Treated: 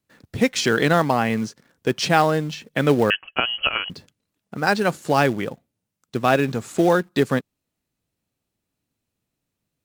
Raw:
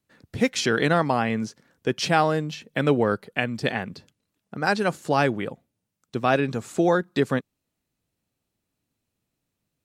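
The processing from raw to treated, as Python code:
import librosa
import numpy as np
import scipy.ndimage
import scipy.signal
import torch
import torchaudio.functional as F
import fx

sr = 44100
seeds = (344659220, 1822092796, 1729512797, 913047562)

p1 = fx.quant_companded(x, sr, bits=4)
p2 = x + (p1 * 10.0 ** (-8.0 / 20.0))
y = fx.freq_invert(p2, sr, carrier_hz=3100, at=(3.1, 3.9))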